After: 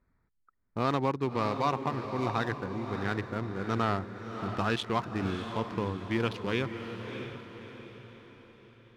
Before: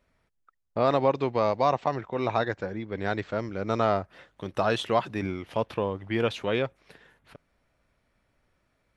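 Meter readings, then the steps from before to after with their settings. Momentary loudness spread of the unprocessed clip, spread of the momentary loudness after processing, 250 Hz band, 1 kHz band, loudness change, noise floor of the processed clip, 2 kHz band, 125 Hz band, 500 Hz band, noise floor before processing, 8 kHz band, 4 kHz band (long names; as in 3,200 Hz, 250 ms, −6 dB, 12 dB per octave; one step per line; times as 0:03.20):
9 LU, 16 LU, −0.5 dB, −3.5 dB, −4.5 dB, −73 dBFS, −1.5 dB, +0.5 dB, −7.0 dB, −73 dBFS, can't be measured, −2.0 dB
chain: adaptive Wiener filter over 15 samples
parametric band 600 Hz −12.5 dB 0.74 octaves
on a send: feedback delay with all-pass diffusion 621 ms, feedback 46%, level −8 dB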